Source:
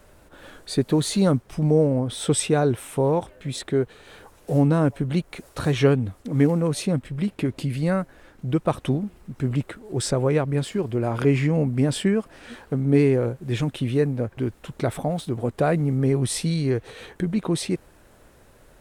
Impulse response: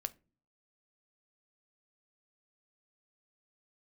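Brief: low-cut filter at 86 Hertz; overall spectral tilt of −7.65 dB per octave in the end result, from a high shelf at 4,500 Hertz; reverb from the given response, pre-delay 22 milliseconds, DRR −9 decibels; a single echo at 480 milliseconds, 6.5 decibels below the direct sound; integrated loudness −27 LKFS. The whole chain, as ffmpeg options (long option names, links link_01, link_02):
-filter_complex "[0:a]highpass=86,highshelf=frequency=4500:gain=-8.5,aecho=1:1:480:0.473,asplit=2[link_01][link_02];[1:a]atrim=start_sample=2205,adelay=22[link_03];[link_02][link_03]afir=irnorm=-1:irlink=0,volume=10dB[link_04];[link_01][link_04]amix=inputs=2:normalize=0,volume=-13.5dB"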